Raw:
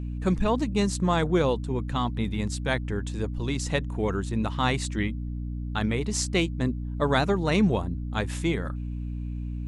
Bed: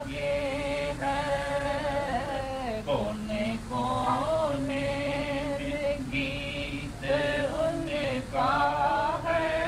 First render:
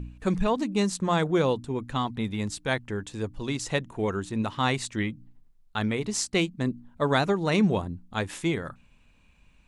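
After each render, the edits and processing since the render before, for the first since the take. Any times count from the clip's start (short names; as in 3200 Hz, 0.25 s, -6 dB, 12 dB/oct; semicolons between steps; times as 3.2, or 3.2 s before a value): de-hum 60 Hz, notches 5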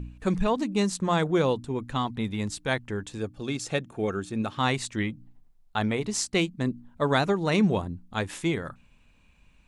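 3.18–4.57 notch comb 990 Hz; 5.09–6.01 bell 730 Hz +5.5 dB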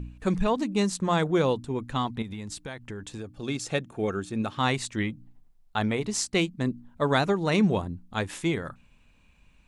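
2.22–3.43 compressor 16:1, threshold -32 dBFS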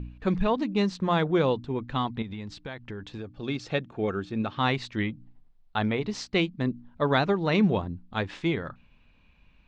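LPF 4600 Hz 24 dB/oct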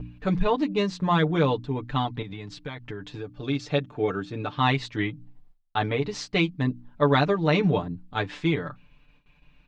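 gate with hold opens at -50 dBFS; comb 6.8 ms, depth 81%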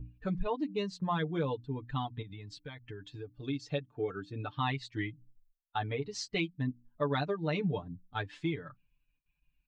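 per-bin expansion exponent 1.5; compressor 2:1, threshold -35 dBFS, peak gain reduction 10 dB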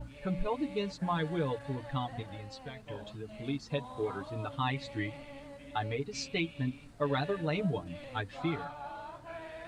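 add bed -17.5 dB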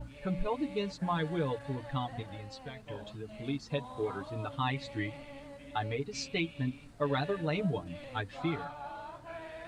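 nothing audible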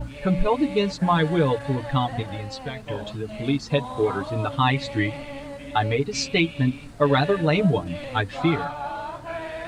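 gain +12 dB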